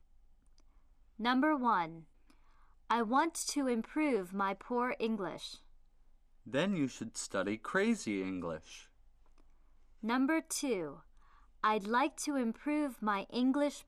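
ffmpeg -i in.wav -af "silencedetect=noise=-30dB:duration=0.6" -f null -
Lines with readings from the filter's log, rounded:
silence_start: 0.00
silence_end: 1.25 | silence_duration: 1.25
silence_start: 1.83
silence_end: 2.91 | silence_duration: 1.07
silence_start: 5.29
silence_end: 6.55 | silence_duration: 1.26
silence_start: 8.50
silence_end: 10.09 | silence_duration: 1.59
silence_start: 10.78
silence_end: 11.64 | silence_duration: 0.86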